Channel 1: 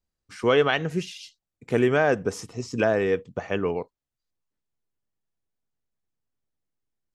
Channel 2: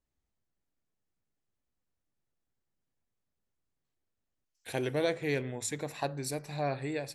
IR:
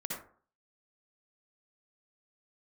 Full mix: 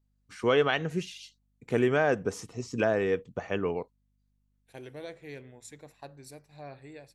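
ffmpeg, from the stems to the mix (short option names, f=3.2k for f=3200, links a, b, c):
-filter_complex "[0:a]bandreject=f=5.1k:w=17,volume=-4dB[a];[1:a]agate=range=-33dB:threshold=-36dB:ratio=3:detection=peak,aeval=exprs='val(0)+0.001*(sin(2*PI*50*n/s)+sin(2*PI*2*50*n/s)/2+sin(2*PI*3*50*n/s)/3+sin(2*PI*4*50*n/s)/4+sin(2*PI*5*50*n/s)/5)':c=same,volume=-12dB[b];[a][b]amix=inputs=2:normalize=0"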